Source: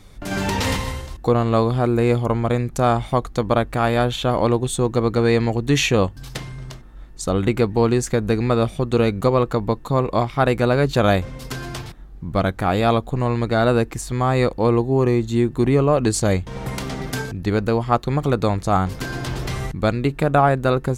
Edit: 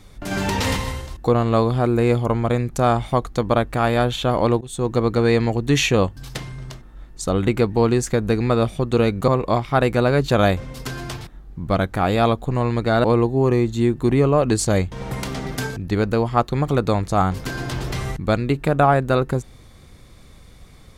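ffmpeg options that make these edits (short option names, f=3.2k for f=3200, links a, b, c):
-filter_complex "[0:a]asplit=4[a][b][c][d];[a]atrim=end=4.61,asetpts=PTS-STARTPTS,afade=t=out:st=4.606:d=0.004:c=hsin:silence=0.0944061[e];[b]atrim=start=4.61:end=9.282,asetpts=PTS-STARTPTS,afade=t=in:d=0.31:silence=0.0944061[f];[c]atrim=start=9.928:end=13.692[g];[d]atrim=start=14.588[h];[e][f]concat=n=2:v=0:a=1[i];[i][g]acrossfade=d=0.004:c1=hsin:c2=hsin[j];[j][h]acrossfade=d=0.004:c1=hsin:c2=hsin"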